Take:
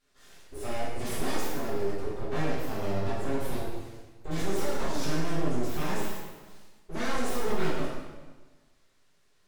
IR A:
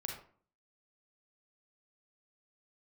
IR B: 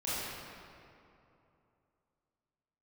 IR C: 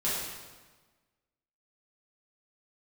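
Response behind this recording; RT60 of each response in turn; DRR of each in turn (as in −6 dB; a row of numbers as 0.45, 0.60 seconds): C; 0.50, 2.8, 1.3 seconds; 0.5, −11.5, −9.5 decibels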